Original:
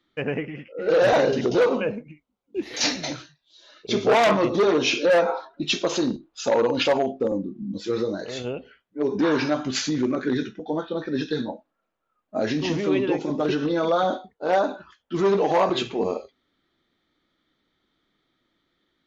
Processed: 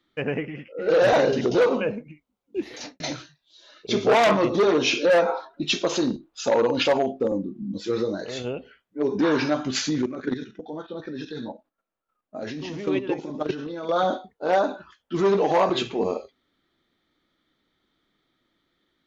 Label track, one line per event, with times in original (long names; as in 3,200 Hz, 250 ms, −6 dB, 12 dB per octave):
2.590000	3.000000	fade out and dull
10.020000	13.960000	output level in coarse steps of 11 dB